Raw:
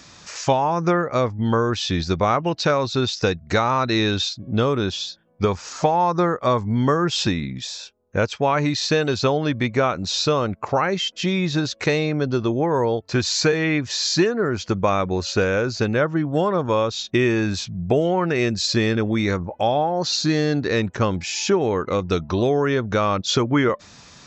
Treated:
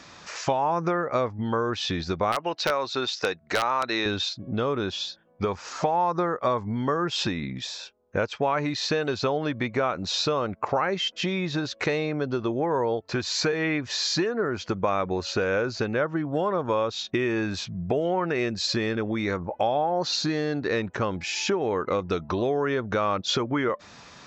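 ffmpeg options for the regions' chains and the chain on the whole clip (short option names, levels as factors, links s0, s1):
-filter_complex "[0:a]asettb=1/sr,asplit=3[s0][s1][s2];[s0]atrim=end=2.324[s3];[s1]atrim=start=2.32:end=4.06,asetpts=PTS-STARTPTS,afade=t=in:d=0.004:c=qsin,afade=t=out:st=1.736:d=0.004:c=qsin,highpass=f=580:p=1,aeval=exprs='(mod(2.99*val(0)+1,2)-1)/2.99':c=same[s4];[s2]atrim=start=4.056[s5];[s3][s4]acrossfade=d=0.004:c1=hsin:c2=qsin[s6];[s6][s5]acrossfade=d=0.004:c1=qsin:c2=hsin,lowpass=f=2200:p=1,acompressor=threshold=0.0631:ratio=3,lowshelf=f=260:g=-9.5,volume=1.5"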